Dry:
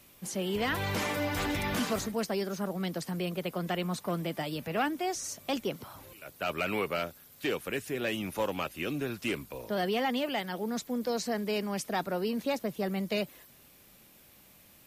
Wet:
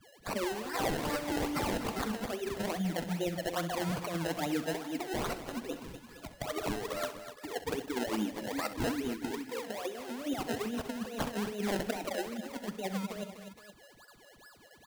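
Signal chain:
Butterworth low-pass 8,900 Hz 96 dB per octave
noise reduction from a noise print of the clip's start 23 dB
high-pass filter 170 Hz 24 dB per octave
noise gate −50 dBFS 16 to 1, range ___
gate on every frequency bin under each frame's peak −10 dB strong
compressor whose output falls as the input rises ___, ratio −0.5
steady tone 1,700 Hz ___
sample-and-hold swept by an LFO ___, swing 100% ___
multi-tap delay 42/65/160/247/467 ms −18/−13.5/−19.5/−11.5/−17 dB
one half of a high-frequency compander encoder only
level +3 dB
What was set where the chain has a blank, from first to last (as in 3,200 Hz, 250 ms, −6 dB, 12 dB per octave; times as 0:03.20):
−13 dB, −37 dBFS, −63 dBFS, 26×, 2.4 Hz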